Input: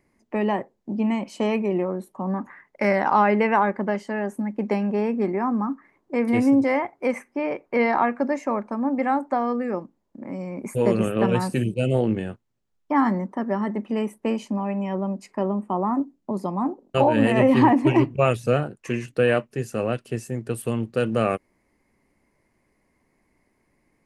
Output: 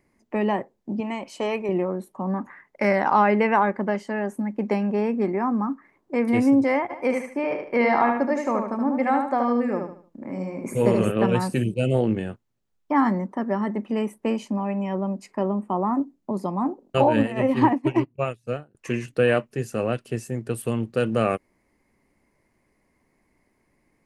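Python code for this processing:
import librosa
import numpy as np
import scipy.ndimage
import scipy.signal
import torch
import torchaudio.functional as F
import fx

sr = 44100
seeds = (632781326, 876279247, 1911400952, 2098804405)

y = fx.peak_eq(x, sr, hz=200.0, db=-9.5, octaves=1.0, at=(1.0, 1.69))
y = fx.echo_feedback(y, sr, ms=75, feedback_pct=33, wet_db=-5, at=(6.89, 11.1), fade=0.02)
y = fx.upward_expand(y, sr, threshold_db=-30.0, expansion=2.5, at=(17.22, 18.75))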